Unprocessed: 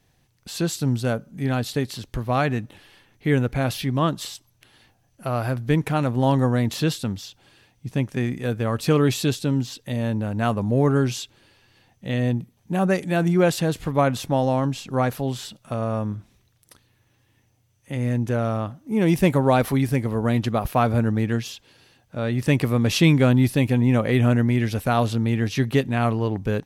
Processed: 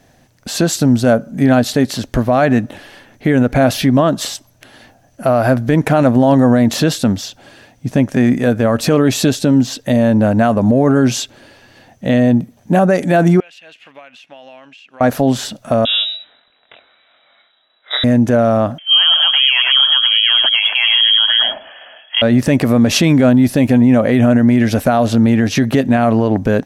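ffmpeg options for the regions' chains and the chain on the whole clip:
-filter_complex "[0:a]asettb=1/sr,asplit=3[a][b][c];[a]atrim=end=13.404[d];[b]atrim=start=13.4:end=15.01,asetpts=PTS-STARTPTS,afade=t=in:d=0.004:c=qsin,afade=t=out:st=1.606:d=0.004:c=qsin,bandpass=f=2.7k:t=q:w=5.9,acompressor=threshold=-49dB:ratio=6:attack=3.2:release=140:knee=1:detection=peak[e];[c]atrim=start=15.006[f];[d][e]acrossfade=d=0.004:c1=hsin:c2=qsin[g];[g][f]acrossfade=d=0.004:c1=qsin:c2=hsin,asettb=1/sr,asplit=3[h][i][j];[h]atrim=end=15.854[k];[i]atrim=start=15.85:end=18.04,asetpts=PTS-STARTPTS,afade=t=in:d=0.004:c=qsin,afade=t=out:st=2.186:d=0.004:c=qsin,lowshelf=f=160:g=-11.5,asplit=2[l][m];[m]adelay=22,volume=-2dB[n];[l][n]amix=inputs=2:normalize=0,atrim=end_sample=96579,lowpass=f=3.4k:t=q:w=0.5098,lowpass=f=3.4k:t=q:w=0.6013,lowpass=f=3.4k:t=q:w=0.9,lowpass=f=3.4k:t=q:w=2.563,afreqshift=-4000[o];[j]atrim=start=18.036[p];[k][o]acrossfade=d=0.004:c1=hsin:c2=qsin[q];[q][p]acrossfade=d=0.004:c1=qsin:c2=hsin,asettb=1/sr,asplit=3[r][s][t];[r]atrim=end=18.784[u];[s]atrim=start=18.78:end=22.22,asetpts=PTS-STARTPTS,afade=t=in:d=0.004:c=qsin,afade=t=out:st=3.436:d=0.004:c=qsin,aecho=1:1:103:0.299,atrim=end_sample=151704,lowpass=f=2.9k:t=q:w=0.5098,lowpass=f=2.9k:t=q:w=0.6013,lowpass=f=2.9k:t=q:w=0.9,lowpass=f=2.9k:t=q:w=2.563,afreqshift=-3400,tiltshelf=f=630:g=-8[v];[t]atrim=start=22.216[w];[u][v]acrossfade=d=0.004:c1=hsin:c2=qsin[x];[x][w]acrossfade=d=0.004:c1=qsin:c2=hsin,equalizer=f=250:t=o:w=0.67:g=9,equalizer=f=630:t=o:w=0.67:g=12,equalizer=f=1.6k:t=o:w=0.67:g=6,equalizer=f=6.3k:t=o:w=0.67:g=4,acompressor=threshold=-16dB:ratio=2,alimiter=level_in=11.5dB:limit=-1dB:release=50:level=0:latency=1,volume=-2.5dB"

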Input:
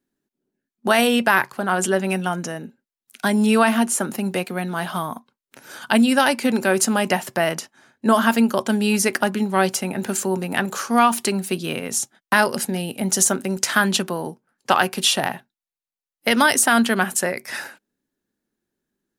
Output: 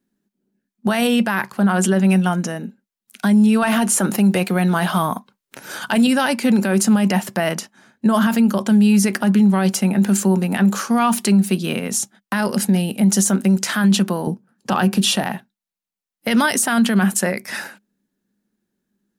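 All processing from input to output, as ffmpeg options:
-filter_complex "[0:a]asettb=1/sr,asplit=3[a][b][c];[a]atrim=end=3.624[d];[b]atrim=start=3.62:end=6.07,asetpts=PTS-STARTPTS,afade=t=in:d=0.004:c=qsin,afade=t=out:st=2.446:d=0.004:c=qsin,equalizer=f=220:t=o:w=0.39:g=-8.5,acontrast=35[e];[c]atrim=start=6.066[f];[d][e]acrossfade=d=0.004:c1=hsin:c2=qsin[g];[g][f]acrossfade=d=0.004:c1=qsin:c2=hsin,asettb=1/sr,asplit=3[h][i][j];[h]atrim=end=14.274[k];[i]atrim=start=14.27:end=15.16,asetpts=PTS-STARTPTS,afade=t=in:d=0.004:c=qsin,afade=t=out:st=0.886:d=0.004:c=qsin,highpass=56,lowshelf=f=390:g=10.5,bandreject=f=2.1k:w=12[l];[j]atrim=start=15.156[m];[k][l]acrossfade=d=0.004:c1=hsin:c2=qsin[n];[n][m]acrossfade=d=0.004:c1=qsin:c2=hsin,equalizer=f=200:w=4.9:g=14,alimiter=limit=-10dB:level=0:latency=1:release=27,volume=2dB"

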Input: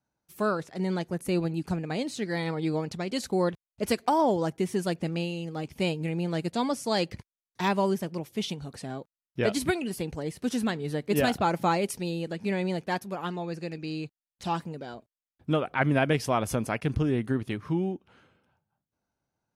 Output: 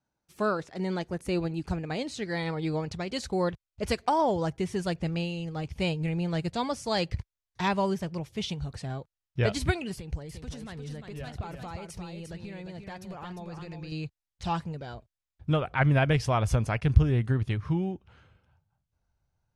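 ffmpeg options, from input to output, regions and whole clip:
-filter_complex "[0:a]asettb=1/sr,asplit=3[a][b][c];[a]atrim=end=9.944[d];[b]atrim=start=9.94:end=13.92,asetpts=PTS-STARTPTS,afade=t=in:d=0.004:c=qsin,afade=t=out:st=3.976:d=0.004:c=qsin,acompressor=threshold=-36dB:ratio=10:attack=3.2:release=140:knee=1:detection=peak,aecho=1:1:351:0.501,atrim=end_sample=175518[e];[c]atrim=start=13.916[f];[d][e]acrossfade=d=0.004:c1=hsin:c2=qsin[g];[g][f]acrossfade=d=0.004:c1=qsin:c2=hsin,lowpass=7.7k,asubboost=boost=10.5:cutoff=78"

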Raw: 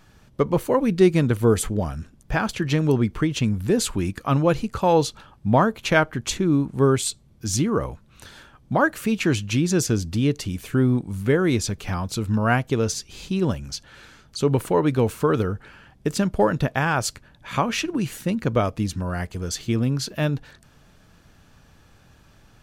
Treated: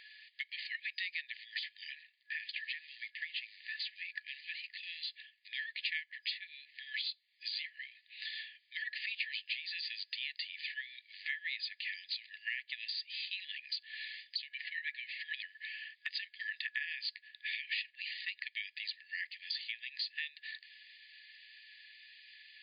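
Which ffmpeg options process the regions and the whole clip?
-filter_complex "[0:a]asettb=1/sr,asplit=3[a][b][c];[a]atrim=end=2.004[d];[b]atrim=start=2:end=5.48,asetpts=PTS-STARTPTS,afade=t=in:d=0.004:c=qsin,afade=t=out:st=3.476:d=0.004:c=qsin,lowpass=f=1.4k:p=1,acrusher=bits=8:mode=log:mix=0:aa=0.000001,acompressor=threshold=-22dB:ratio=2:attack=3.2:release=140:knee=1:detection=peak[e];[c]atrim=start=5.476[f];[d][e]acrossfade=d=0.004:c1=hsin:c2=qsin[g];[g][f]acrossfade=d=0.004:c1=qsin:c2=hsin,asettb=1/sr,asplit=3[h][i][j];[h]atrim=end=14.494[k];[i]atrim=start=14.49:end=15.26,asetpts=PTS-STARTPTS,afade=t=in:d=0.004:c=qsin,afade=t=out:st=0.766:d=0.004:c=qsin,bandpass=f=1.7k:t=q:w=2.3,aemphasis=mode=production:type=75kf,aecho=1:1:6:0.58,atrim=end_sample=33957[l];[j]atrim=start=15.256[m];[k][l]acrossfade=d=0.004:c1=hsin:c2=qsin[n];[n][m]acrossfade=d=0.004:c1=qsin:c2=hsin,afftfilt=real='re*between(b*sr/4096,1700,4900)':imag='im*between(b*sr/4096,1700,4900)':win_size=4096:overlap=0.75,equalizer=f=3.3k:w=1.5:g=-2.5,acompressor=threshold=-48dB:ratio=4,volume=9.5dB"

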